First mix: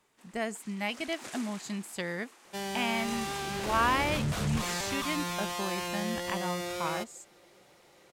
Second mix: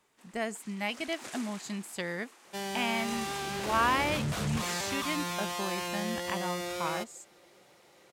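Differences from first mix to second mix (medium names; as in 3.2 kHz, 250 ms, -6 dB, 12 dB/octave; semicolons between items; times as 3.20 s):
second sound: add high-pass 55 Hz; master: add bass shelf 150 Hz -3 dB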